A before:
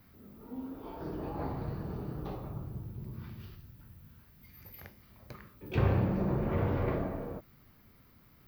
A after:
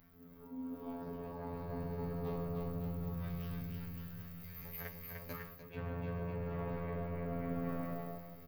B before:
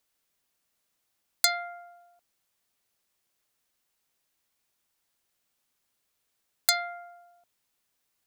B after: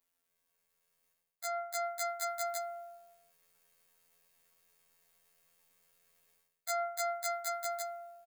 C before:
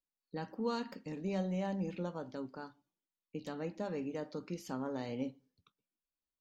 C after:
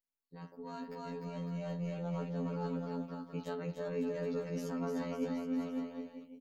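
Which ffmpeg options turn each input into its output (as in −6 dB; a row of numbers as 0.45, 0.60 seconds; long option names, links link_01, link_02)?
-af "afftfilt=real='hypot(re,im)*cos(PI*b)':imag='0':win_size=2048:overlap=0.75,equalizer=frequency=4800:width=0.78:gain=-5,aecho=1:1:300|555|771.8|956|1113:0.631|0.398|0.251|0.158|0.1,areverse,acompressor=threshold=-42dB:ratio=16,areverse,aecho=1:1:7.2:0.91,dynaudnorm=framelen=170:gausssize=17:maxgain=9dB,volume=-2.5dB"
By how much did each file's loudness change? −7.0, −9.5, +1.0 LU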